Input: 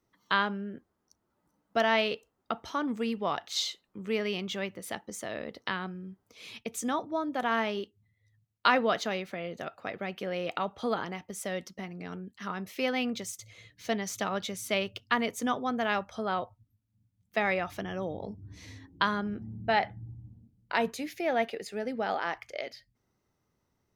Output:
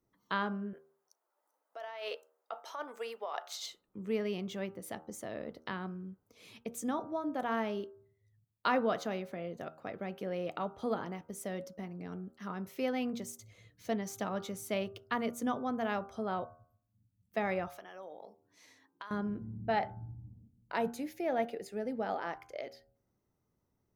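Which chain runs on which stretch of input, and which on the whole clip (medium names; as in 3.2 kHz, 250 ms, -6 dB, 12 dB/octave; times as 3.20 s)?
0.73–3.66 s: high-pass 540 Hz 24 dB/octave + compressor with a negative ratio -34 dBFS
17.68–19.11 s: high-pass 720 Hz + compression 3:1, threshold -38 dBFS
whole clip: peaking EQ 3.2 kHz -9.5 dB 2.9 oct; de-hum 78.89 Hz, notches 20; trim -1.5 dB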